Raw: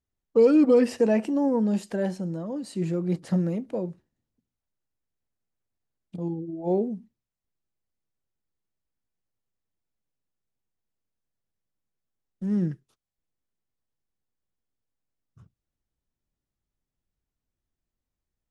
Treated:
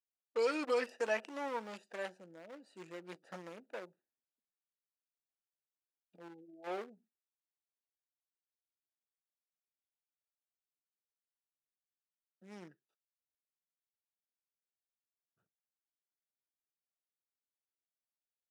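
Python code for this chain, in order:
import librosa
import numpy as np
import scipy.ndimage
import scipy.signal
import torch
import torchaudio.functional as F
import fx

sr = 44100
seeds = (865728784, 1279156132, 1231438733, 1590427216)

y = fx.wiener(x, sr, points=41)
y = scipy.signal.sosfilt(scipy.signal.butter(2, 1200.0, 'highpass', fs=sr, output='sos'), y)
y = F.gain(torch.from_numpy(y), 2.0).numpy()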